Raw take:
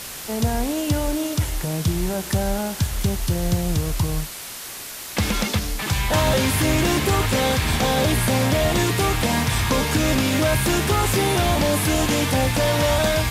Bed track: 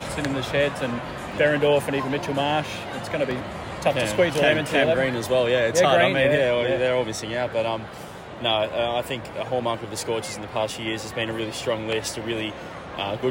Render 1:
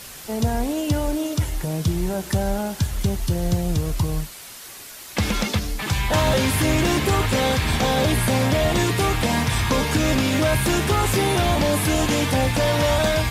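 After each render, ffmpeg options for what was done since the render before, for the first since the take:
-af "afftdn=nr=6:nf=-35"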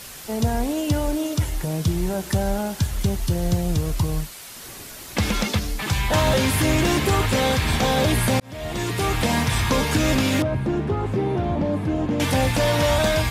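-filter_complex "[0:a]asettb=1/sr,asplit=3[s0][s1][s2];[s0]atrim=end=4.564[s3];[s1]atrim=start=4.56:end=5.18,asetpts=PTS-STARTPTS,afade=t=in:d=0.004:c=qsin,afade=t=out:st=0.616:d=0.004:c=qsin,lowshelf=f=490:g=10.5[s4];[s2]atrim=start=5.176[s5];[s3][s4]acrossfade=d=0.004:c1=hsin:c2=qsin[s6];[s6][s5]acrossfade=d=0.004:c1=qsin:c2=hsin,asettb=1/sr,asplit=3[s7][s8][s9];[s7]atrim=end=10.424[s10];[s8]atrim=start=10.42:end=12.2,asetpts=PTS-STARTPTS,afade=t=in:d=0.004:c=qsin,afade=t=out:st=1.776:d=0.004:c=qsin,bandpass=f=220:t=q:w=0.54[s11];[s9]atrim=start=12.196[s12];[s10][s11]acrossfade=d=0.004:c1=hsin:c2=qsin[s13];[s13][s12]acrossfade=d=0.004:c1=qsin:c2=hsin,asplit=2[s14][s15];[s14]atrim=end=8.4,asetpts=PTS-STARTPTS,afade=t=out:st=8.396:d=0.004:c=hsin[s16];[s15]atrim=start=8.4,asetpts=PTS-STARTPTS,afade=t=in:d=0.83[s17];[s16][s17]concat=n=2:v=0:a=1"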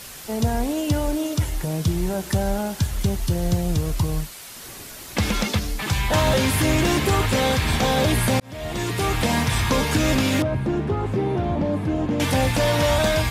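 -af anull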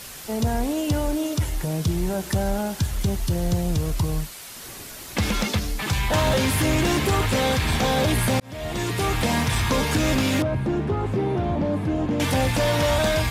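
-af "asoftclip=type=tanh:threshold=0.224"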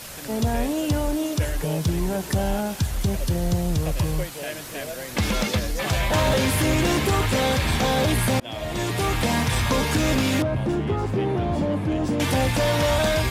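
-filter_complex "[1:a]volume=0.2[s0];[0:a][s0]amix=inputs=2:normalize=0"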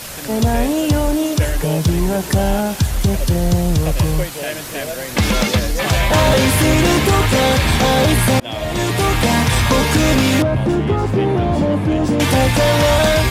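-af "volume=2.37"

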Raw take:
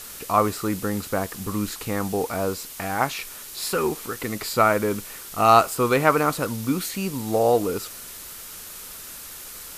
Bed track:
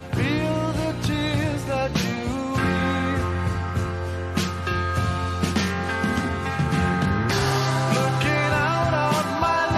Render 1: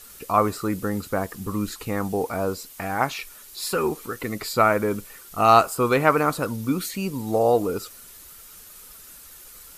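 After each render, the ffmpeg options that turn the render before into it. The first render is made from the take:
-af "afftdn=nr=9:nf=-39"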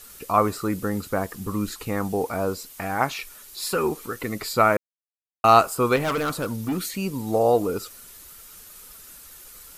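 -filter_complex "[0:a]asettb=1/sr,asplit=3[s0][s1][s2];[s0]atrim=end=5.964[s3];[s1]atrim=start=5.96:end=6.78,asetpts=PTS-STARTPTS,afade=t=in:d=0.004:c=qsin,afade=t=out:st=0.816:d=0.004:c=qsin,volume=11.9,asoftclip=hard,volume=0.0841[s4];[s2]atrim=start=6.776[s5];[s3][s4]acrossfade=d=0.004:c1=hsin:c2=qsin[s6];[s6][s5]acrossfade=d=0.004:c1=qsin:c2=hsin,asplit=3[s7][s8][s9];[s7]atrim=end=4.77,asetpts=PTS-STARTPTS,afade=t=out:st=4.766:d=0.004:c=hsin[s10];[s8]atrim=start=4.77:end=5.44,asetpts=PTS-STARTPTS,volume=0[s11];[s9]atrim=start=5.44,asetpts=PTS-STARTPTS,afade=t=in:d=0.004:c=hsin[s12];[s10][s11][s12]concat=n=3:v=0:a=1"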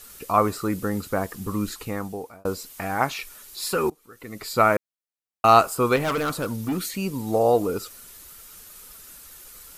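-filter_complex "[0:a]asplit=3[s0][s1][s2];[s0]atrim=end=2.45,asetpts=PTS-STARTPTS,afade=t=out:st=1.73:d=0.72[s3];[s1]atrim=start=2.45:end=3.9,asetpts=PTS-STARTPTS,afade=t=in:d=0.004:c=hsin,afade=t=out:st=1.446:d=0.004:c=hsin:silence=0.0794328[s4];[s2]atrim=start=3.9,asetpts=PTS-STARTPTS,afade=t=in:d=0.7:c=qua:silence=0.0794328[s5];[s3][s4][s5]concat=n=3:v=0:a=1"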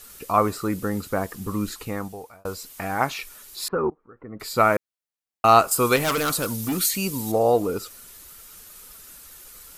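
-filter_complex "[0:a]asettb=1/sr,asplit=3[s0][s1][s2];[s0]atrim=end=2.084[s3];[s1]atrim=start=2.08:end=2.63,asetpts=PTS-STARTPTS,afade=t=in:d=0.004:c=qsin,afade=t=out:st=0.546:d=0.004:c=qsin,equalizer=f=270:t=o:w=1.8:g=-8[s4];[s2]atrim=start=2.626[s5];[s3][s4]acrossfade=d=0.004:c1=hsin:c2=qsin[s6];[s6][s5]acrossfade=d=0.004:c1=qsin:c2=hsin,asettb=1/sr,asplit=3[s7][s8][s9];[s7]atrim=end=3.684[s10];[s8]atrim=start=3.68:end=4.4,asetpts=PTS-STARTPTS,afade=t=in:d=0.004:c=qsin,afade=t=out:st=0.716:d=0.004:c=qsin,lowpass=f=1400:w=0.5412,lowpass=f=1400:w=1.3066[s11];[s9]atrim=start=4.396[s12];[s10][s11]acrossfade=d=0.004:c1=hsin:c2=qsin[s13];[s13][s12]acrossfade=d=0.004:c1=qsin:c2=hsin,asettb=1/sr,asplit=3[s14][s15][s16];[s14]atrim=end=5.714[s17];[s15]atrim=start=5.71:end=7.32,asetpts=PTS-STARTPTS,afade=t=in:d=0.004:c=qsin,afade=t=out:st=1.606:d=0.004:c=qsin,highshelf=f=3300:g=11.5[s18];[s16]atrim=start=7.316[s19];[s17][s18]acrossfade=d=0.004:c1=hsin:c2=qsin[s20];[s20][s19]acrossfade=d=0.004:c1=qsin:c2=hsin"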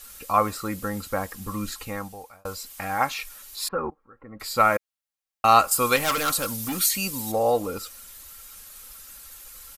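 -af "equalizer=f=300:w=0.91:g=-8,aecho=1:1:3.7:0.44"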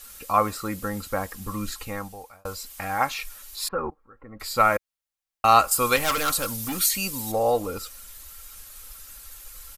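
-af "asubboost=boost=2:cutoff=89"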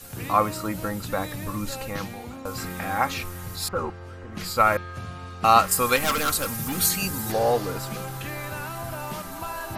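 -filter_complex "[1:a]volume=0.237[s0];[0:a][s0]amix=inputs=2:normalize=0"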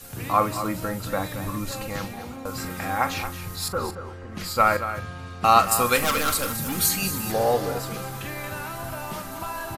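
-filter_complex "[0:a]asplit=2[s0][s1];[s1]adelay=41,volume=0.224[s2];[s0][s2]amix=inputs=2:normalize=0,aecho=1:1:226:0.282"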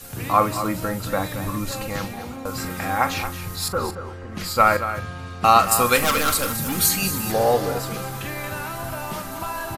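-af "volume=1.41,alimiter=limit=0.794:level=0:latency=1"

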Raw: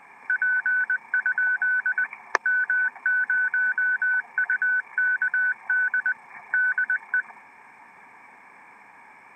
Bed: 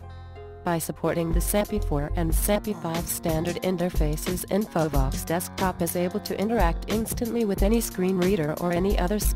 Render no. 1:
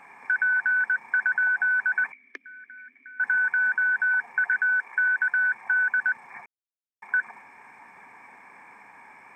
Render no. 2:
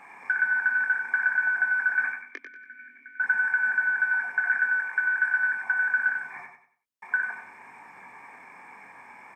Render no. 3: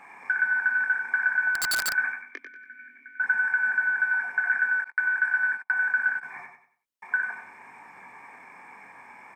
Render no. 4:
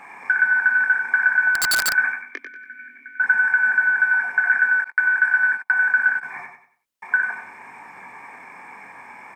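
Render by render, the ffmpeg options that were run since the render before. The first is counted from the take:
-filter_complex "[0:a]asettb=1/sr,asplit=3[s0][s1][s2];[s0]atrim=end=2.124[s3];[s1]atrim=start=2.12:end=3.2,asetpts=PTS-STARTPTS,afade=t=in:d=0.004:c=qsin,afade=t=out:st=1.076:d=0.004:c=qsin,asplit=3[s4][s5][s6];[s4]bandpass=f=270:t=q:w=8,volume=1[s7];[s5]bandpass=f=2290:t=q:w=8,volume=0.501[s8];[s6]bandpass=f=3010:t=q:w=8,volume=0.355[s9];[s7][s8][s9]amix=inputs=3:normalize=0[s10];[s2]atrim=start=3.196[s11];[s3][s10]acrossfade=d=0.004:c1=hsin:c2=qsin[s12];[s12][s11]acrossfade=d=0.004:c1=qsin:c2=hsin,asettb=1/sr,asplit=3[s13][s14][s15];[s13]atrim=end=4.594[s16];[s14]atrim=start=4.59:end=5.33,asetpts=PTS-STARTPTS,afade=t=in:d=0.004:c=qsin,afade=t=out:st=0.736:d=0.004:c=qsin,highpass=230[s17];[s15]atrim=start=5.326[s18];[s16][s17]acrossfade=d=0.004:c1=hsin:c2=qsin[s19];[s19][s18]acrossfade=d=0.004:c1=qsin:c2=hsin,asplit=3[s20][s21][s22];[s20]atrim=end=6.46,asetpts=PTS-STARTPTS,afade=t=out:st=6.456:d=0.004:c=hsin[s23];[s21]atrim=start=6.46:end=7.02,asetpts=PTS-STARTPTS,volume=0[s24];[s22]atrim=start=7.02,asetpts=PTS-STARTPTS,afade=t=in:d=0.004:c=hsin[s25];[s23][s24][s25]concat=n=3:v=0:a=1"
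-filter_complex "[0:a]asplit=2[s0][s1];[s1]adelay=21,volume=0.473[s2];[s0][s2]amix=inputs=2:normalize=0,aecho=1:1:94|188|282|376:0.473|0.147|0.0455|0.0141"
-filter_complex "[0:a]asettb=1/sr,asplit=3[s0][s1][s2];[s0]atrim=end=1.554[s3];[s1]atrim=start=1.55:end=1.96,asetpts=PTS-STARTPTS,afade=t=in:d=0.004:c=qsin,afade=t=out:st=0.406:d=0.004:c=qsin,aeval=exprs='(mod(11.2*val(0)+1,2)-1)/11.2':c=same[s4];[s2]atrim=start=1.956[s5];[s3][s4]acrossfade=d=0.004:c1=hsin:c2=qsin[s6];[s6][s5]acrossfade=d=0.004:c1=qsin:c2=hsin,asettb=1/sr,asplit=3[s7][s8][s9];[s7]atrim=end=4.844[s10];[s8]atrim=start=4.84:end=6.23,asetpts=PTS-STARTPTS,afade=t=in:d=0.004:c=qsin,afade=t=out:st=1.386:d=0.004:c=qsin,agate=range=0.00794:threshold=0.0251:ratio=16:release=100:detection=peak[s11];[s9]atrim=start=6.226[s12];[s10][s11]acrossfade=d=0.004:c1=hsin:c2=qsin[s13];[s13][s12]acrossfade=d=0.004:c1=qsin:c2=hsin"
-af "volume=2.11"

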